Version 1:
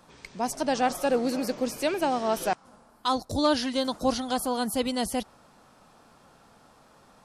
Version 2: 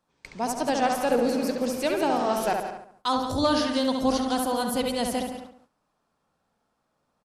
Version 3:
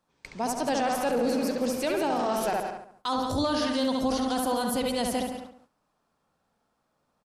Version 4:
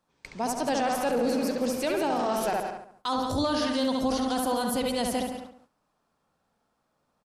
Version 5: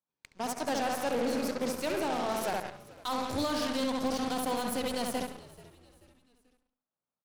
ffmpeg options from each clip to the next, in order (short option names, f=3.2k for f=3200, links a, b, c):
-filter_complex "[0:a]asplit=2[a][b];[b]adelay=69,lowpass=f=2.6k:p=1,volume=-3.5dB,asplit=2[c][d];[d]adelay=69,lowpass=f=2.6k:p=1,volume=0.5,asplit=2[e][f];[f]adelay=69,lowpass=f=2.6k:p=1,volume=0.5,asplit=2[g][h];[h]adelay=69,lowpass=f=2.6k:p=1,volume=0.5,asplit=2[i][j];[j]adelay=69,lowpass=f=2.6k:p=1,volume=0.5,asplit=2[k][l];[l]adelay=69,lowpass=f=2.6k:p=1,volume=0.5,asplit=2[m][n];[n]adelay=69,lowpass=f=2.6k:p=1,volume=0.5[o];[c][e][g][i][k][m][o]amix=inputs=7:normalize=0[p];[a][p]amix=inputs=2:normalize=0,agate=range=-20dB:threshold=-46dB:ratio=16:detection=peak,asplit=2[q][r];[r]aecho=0:1:173:0.282[s];[q][s]amix=inputs=2:normalize=0"
-af "alimiter=limit=-18.5dB:level=0:latency=1:release=10"
-af anull
-filter_complex "[0:a]highpass=73,aeval=exprs='0.126*(cos(1*acos(clip(val(0)/0.126,-1,1)))-cos(1*PI/2))+0.00355*(cos(3*acos(clip(val(0)/0.126,-1,1)))-cos(3*PI/2))+0.00224*(cos(5*acos(clip(val(0)/0.126,-1,1)))-cos(5*PI/2))+0.0158*(cos(7*acos(clip(val(0)/0.126,-1,1)))-cos(7*PI/2))+0.00708*(cos(8*acos(clip(val(0)/0.126,-1,1)))-cos(8*PI/2))':c=same,asplit=4[a][b][c][d];[b]adelay=435,afreqshift=-85,volume=-20dB[e];[c]adelay=870,afreqshift=-170,volume=-27.1dB[f];[d]adelay=1305,afreqshift=-255,volume=-34.3dB[g];[a][e][f][g]amix=inputs=4:normalize=0,volume=-4.5dB"